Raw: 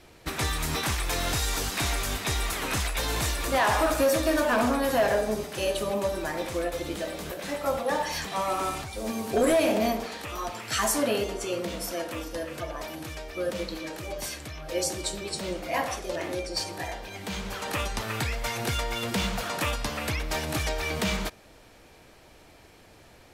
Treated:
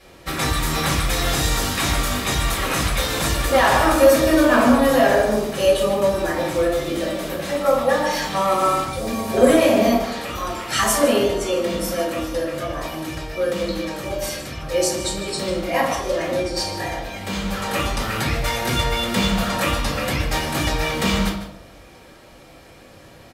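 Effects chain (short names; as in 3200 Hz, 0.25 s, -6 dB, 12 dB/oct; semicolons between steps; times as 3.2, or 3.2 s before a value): HPF 99 Hz 6 dB/oct; outdoor echo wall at 26 m, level -11 dB; reverb RT60 0.55 s, pre-delay 4 ms, DRR -5 dB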